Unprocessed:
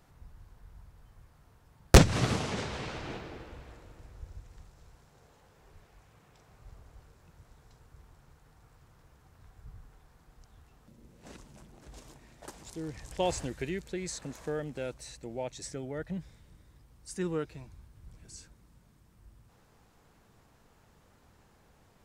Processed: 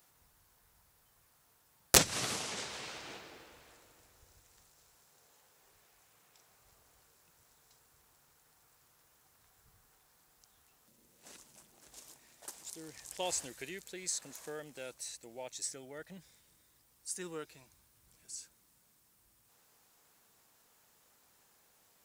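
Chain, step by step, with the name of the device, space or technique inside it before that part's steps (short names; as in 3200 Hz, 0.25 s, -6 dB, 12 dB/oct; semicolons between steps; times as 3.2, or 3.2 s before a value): turntable without a phono preamp (RIAA curve recording; white noise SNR 36 dB); gain -6.5 dB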